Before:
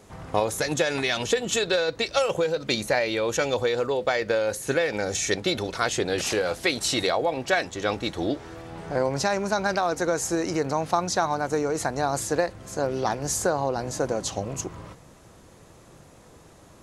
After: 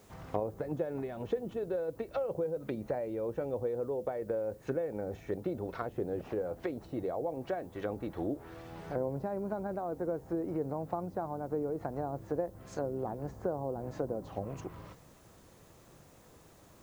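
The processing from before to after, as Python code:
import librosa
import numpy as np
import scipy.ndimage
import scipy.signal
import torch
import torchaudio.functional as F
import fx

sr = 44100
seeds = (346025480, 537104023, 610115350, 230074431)

y = fx.env_lowpass_down(x, sr, base_hz=590.0, full_db=-22.5)
y = fx.dmg_noise_colour(y, sr, seeds[0], colour='blue', level_db=-62.0)
y = y * librosa.db_to_amplitude(-7.5)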